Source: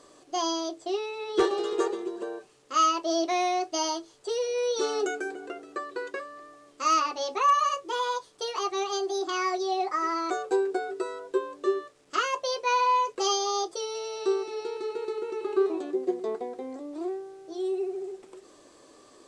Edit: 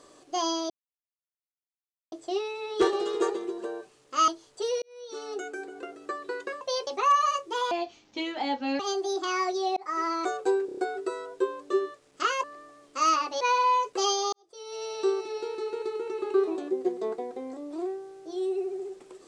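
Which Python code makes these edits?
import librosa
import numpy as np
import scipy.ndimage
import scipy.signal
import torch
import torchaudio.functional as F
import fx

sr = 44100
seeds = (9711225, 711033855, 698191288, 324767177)

y = fx.edit(x, sr, fx.insert_silence(at_s=0.7, length_s=1.42),
    fx.cut(start_s=2.86, length_s=1.09),
    fx.fade_in_span(start_s=4.49, length_s=1.22),
    fx.swap(start_s=6.28, length_s=0.97, other_s=12.37, other_length_s=0.26),
    fx.speed_span(start_s=8.09, length_s=0.76, speed=0.7),
    fx.fade_in_span(start_s=9.82, length_s=0.31, curve='qsin'),
    fx.stutter(start_s=10.71, slice_s=0.03, count=5),
    fx.fade_in_span(start_s=13.55, length_s=0.51, curve='qua'), tone=tone)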